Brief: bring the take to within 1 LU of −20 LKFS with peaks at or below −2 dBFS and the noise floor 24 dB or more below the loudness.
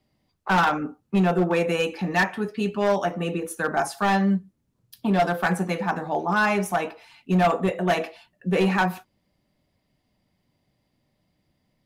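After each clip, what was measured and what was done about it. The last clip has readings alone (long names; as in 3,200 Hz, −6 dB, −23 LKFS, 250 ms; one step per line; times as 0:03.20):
share of clipped samples 1.6%; peaks flattened at −15.0 dBFS; integrated loudness −24.0 LKFS; sample peak −15.0 dBFS; target loudness −20.0 LKFS
→ clipped peaks rebuilt −15 dBFS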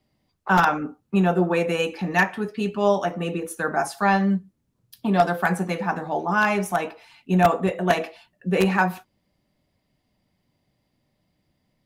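share of clipped samples 0.0%; integrated loudness −23.0 LKFS; sample peak −6.0 dBFS; target loudness −20.0 LKFS
→ level +3 dB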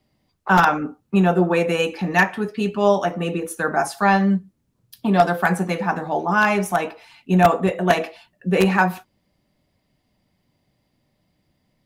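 integrated loudness −20.0 LKFS; sample peak −3.0 dBFS; background noise floor −70 dBFS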